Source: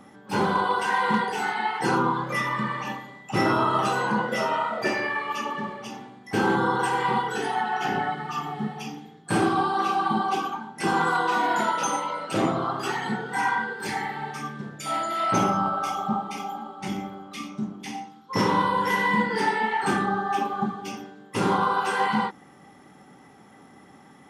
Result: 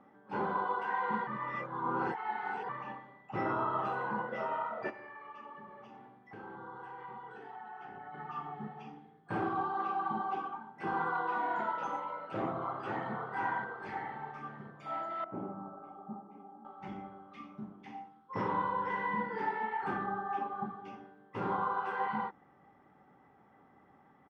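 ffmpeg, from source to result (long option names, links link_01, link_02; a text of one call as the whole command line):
ffmpeg -i in.wav -filter_complex "[0:a]asplit=3[link_01][link_02][link_03];[link_01]afade=type=out:start_time=4.89:duration=0.02[link_04];[link_02]acompressor=threshold=-37dB:ratio=3:attack=3.2:release=140:knee=1:detection=peak,afade=type=in:start_time=4.89:duration=0.02,afade=type=out:start_time=8.13:duration=0.02[link_05];[link_03]afade=type=in:start_time=8.13:duration=0.02[link_06];[link_04][link_05][link_06]amix=inputs=3:normalize=0,asplit=2[link_07][link_08];[link_08]afade=type=in:start_time=12.08:duration=0.01,afade=type=out:start_time=13.11:duration=0.01,aecho=0:1:530|1060|1590|2120|2650|3180:0.562341|0.281171|0.140585|0.0702927|0.0351463|0.0175732[link_09];[link_07][link_09]amix=inputs=2:normalize=0,asettb=1/sr,asplit=3[link_10][link_11][link_12];[link_10]atrim=end=15.244[link_13];[link_11]atrim=start=15.24:end=16.65,asetpts=PTS-STARTPTS,afade=type=in:duration=0.004:curve=qsin,afade=type=out:start_time=1.406:duration=0.004:curve=qsin,bandpass=frequency=280:width_type=q:width=1.3[link_14];[link_12]atrim=start=16.646[link_15];[link_13][link_14]acrossfade=duration=0.004:curve1=hsin:curve2=qsin[link_16];[link_16][link_15]acrossfade=duration=0.004:curve1=qsin:curve2=hsin,asplit=3[link_17][link_18][link_19];[link_17]atrim=end=1.272[link_20];[link_18]atrim=start=1.268:end=2.692,asetpts=PTS-STARTPTS,areverse[link_21];[link_19]atrim=start=2.688[link_22];[link_20][link_21]acrossfade=duration=0.004:curve1=hsin:curve2=hsin[link_23];[link_23][link_22]acrossfade=duration=0.004:curve1=hsin:curve2=hsin,asubboost=boost=3:cutoff=120,lowpass=1500,lowshelf=frequency=200:gain=-11,volume=-8dB" out.wav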